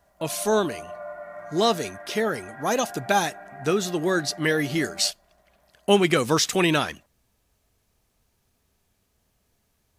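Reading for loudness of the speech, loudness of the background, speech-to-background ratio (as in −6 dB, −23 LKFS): −24.0 LKFS, −40.5 LKFS, 16.5 dB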